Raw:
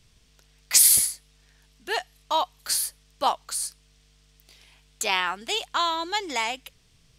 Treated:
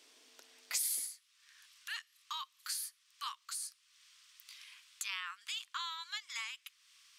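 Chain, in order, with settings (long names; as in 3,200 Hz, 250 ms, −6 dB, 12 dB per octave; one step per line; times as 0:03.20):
elliptic high-pass filter 270 Hz, stop band 40 dB, from 0:01.09 1,100 Hz
dynamic equaliser 560 Hz, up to −4 dB, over −44 dBFS, Q 0.74
downward compressor 2 to 1, threshold −53 dBFS, peak gain reduction 21 dB
level +2.5 dB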